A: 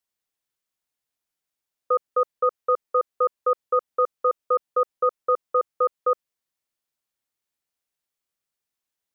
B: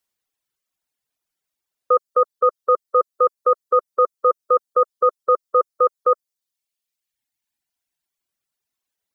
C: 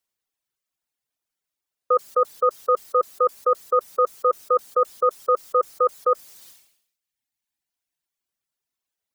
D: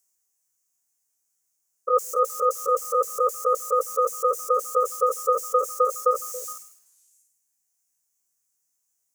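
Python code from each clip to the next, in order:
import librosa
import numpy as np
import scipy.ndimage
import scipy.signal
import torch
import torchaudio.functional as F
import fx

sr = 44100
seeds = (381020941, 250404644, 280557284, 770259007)

y1 = fx.dereverb_blind(x, sr, rt60_s=1.6)
y1 = y1 * librosa.db_to_amplitude(5.5)
y2 = fx.sustainer(y1, sr, db_per_s=81.0)
y2 = y2 * librosa.db_to_amplitude(-3.0)
y3 = fx.spec_steps(y2, sr, hold_ms=50)
y3 = fx.high_shelf_res(y3, sr, hz=5000.0, db=10.5, q=3.0)
y3 = fx.echo_stepped(y3, sr, ms=139, hz=180.0, octaves=1.4, feedback_pct=70, wet_db=-11.5)
y3 = y3 * librosa.db_to_amplitude(1.5)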